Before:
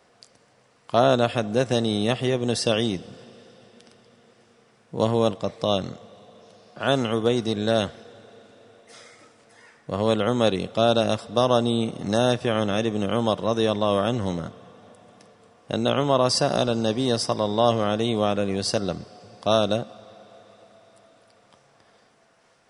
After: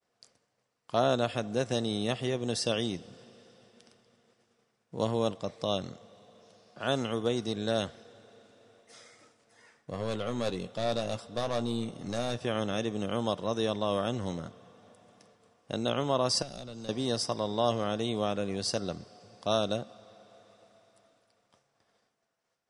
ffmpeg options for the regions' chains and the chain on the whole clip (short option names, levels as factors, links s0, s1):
-filter_complex "[0:a]asettb=1/sr,asplit=3[s0][s1][s2];[s0]atrim=end=9.914[s3];[s1]atrim=start=9.91:end=12.38,asetpts=PTS-STARTPTS,afade=t=in:d=0.004:c=qsin,afade=t=out:st=2.466:d=0.004:c=qsin,aeval=exprs='(tanh(6.31*val(0)+0.35)-tanh(0.35))/6.31':c=same,asplit=2[s4][s5];[s5]adelay=17,volume=0.266[s6];[s4][s6]amix=inputs=2:normalize=0,atrim=end_sample=108927[s7];[s2]atrim=start=12.376[s8];[s3][s7]acrossfade=d=0.004:c1=hsin:c2=qsin[s9];[s9][s8]acrossfade=d=0.004:c1=qsin:c2=hsin,asettb=1/sr,asplit=3[s10][s11][s12];[s10]atrim=end=16.424[s13];[s11]atrim=start=16.42:end=16.89,asetpts=PTS-STARTPTS,afade=t=in:d=0.004:c=qsin,afade=t=out:st=0.466:d=0.004:c=qsin,aeval=exprs='(tanh(5.01*val(0)+0.25)-tanh(0.25))/5.01':c=same,acrossover=split=220|2600[s14][s15][s16];[s14]acompressor=threshold=0.0126:ratio=4[s17];[s15]acompressor=threshold=0.0141:ratio=4[s18];[s16]acompressor=threshold=0.00708:ratio=4[s19];[s17][s18][s19]amix=inputs=3:normalize=0[s20];[s12]atrim=start=16.886[s21];[s13][s20]acrossfade=d=0.004:c1=hsin:c2=qsin[s22];[s22][s21]acrossfade=d=0.004:c1=qsin:c2=hsin,agate=range=0.0224:threshold=0.00282:ratio=3:detection=peak,equalizer=f=6200:t=o:w=1.2:g=3.5,volume=0.398"